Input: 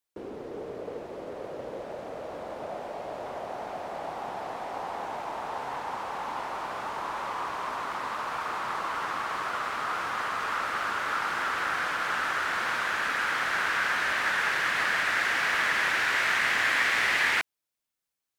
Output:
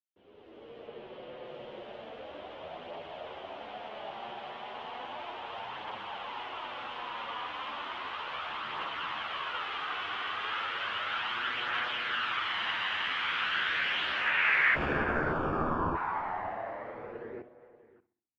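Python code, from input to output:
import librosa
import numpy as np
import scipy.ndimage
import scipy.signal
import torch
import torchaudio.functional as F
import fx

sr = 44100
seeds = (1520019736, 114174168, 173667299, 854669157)

p1 = fx.fade_in_head(x, sr, length_s=1.09)
p2 = fx.lowpass(p1, sr, hz=5200.0, slope=12, at=(0.86, 1.45))
p3 = p2 + fx.echo_feedback(p2, sr, ms=65, feedback_pct=45, wet_db=-14.0, dry=0)
p4 = fx.sample_hold(p3, sr, seeds[0], rate_hz=2000.0, jitter_pct=0, at=(14.73, 15.94), fade=0.02)
p5 = fx.filter_sweep_lowpass(p4, sr, from_hz=3100.0, to_hz=270.0, start_s=14.1, end_s=18.04, q=5.1)
p6 = p5 + 10.0 ** (-18.0 / 20.0) * np.pad(p5, (int(583 * sr / 1000.0), 0))[:len(p5)]
p7 = fx.chorus_voices(p6, sr, voices=2, hz=0.17, base_ms=11, depth_ms=2.9, mix_pct=55)
y = p7 * librosa.db_to_amplitude(-4.5)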